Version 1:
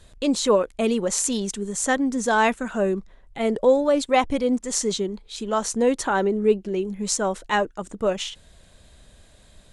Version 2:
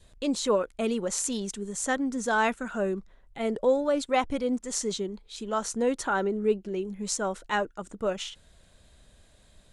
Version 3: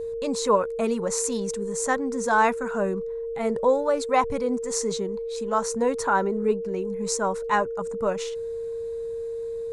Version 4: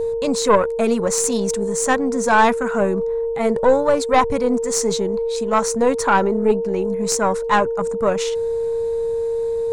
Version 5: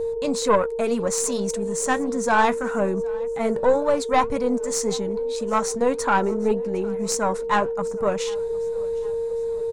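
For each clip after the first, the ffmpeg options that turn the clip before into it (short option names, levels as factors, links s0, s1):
-af "adynamicequalizer=threshold=0.00562:dfrequency=1400:dqfactor=7.8:tfrequency=1400:tqfactor=7.8:attack=5:release=100:ratio=0.375:range=3.5:mode=boostabove:tftype=bell,volume=0.501"
-af "equalizer=f=100:t=o:w=0.33:g=9,equalizer=f=160:t=o:w=0.33:g=4,equalizer=f=315:t=o:w=0.33:g=-10,equalizer=f=1000:t=o:w=0.33:g=9,equalizer=f=3150:t=o:w=0.33:g=-11,aeval=exprs='val(0)+0.0282*sin(2*PI*460*n/s)':c=same,volume=1.33"
-af "areverse,acompressor=mode=upward:threshold=0.0631:ratio=2.5,areverse,aeval=exprs='(tanh(4.47*val(0)+0.45)-tanh(0.45))/4.47':c=same,volume=2.66"
-af "aecho=1:1:758|1516|2274:0.0631|0.0341|0.0184,flanger=delay=3.7:depth=3.1:regen=-71:speed=1.8:shape=sinusoidal"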